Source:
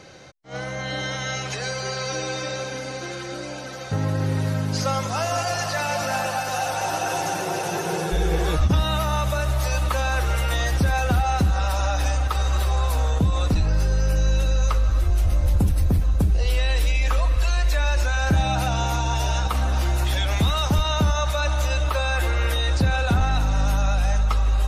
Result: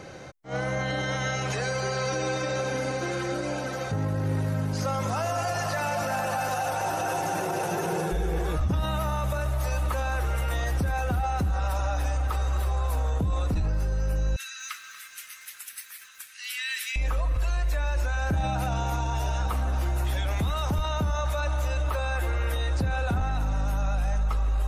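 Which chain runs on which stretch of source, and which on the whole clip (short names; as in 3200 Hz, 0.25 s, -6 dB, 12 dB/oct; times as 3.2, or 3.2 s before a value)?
14.36–16.96 steep high-pass 1600 Hz + lo-fi delay 0.237 s, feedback 35%, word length 8-bit, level -15 dB
whole clip: bell 4300 Hz -7.5 dB 1.7 oct; limiter -24 dBFS; gain +4 dB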